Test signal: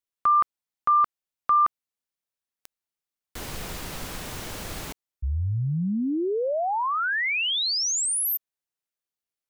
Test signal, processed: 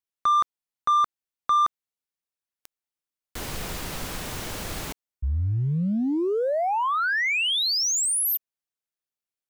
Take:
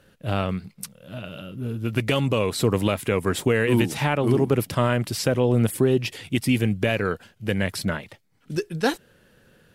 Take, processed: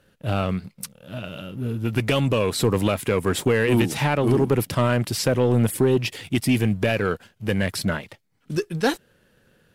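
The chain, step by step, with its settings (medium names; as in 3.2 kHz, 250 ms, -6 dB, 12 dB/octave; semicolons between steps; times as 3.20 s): waveshaping leveller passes 1; trim -1.5 dB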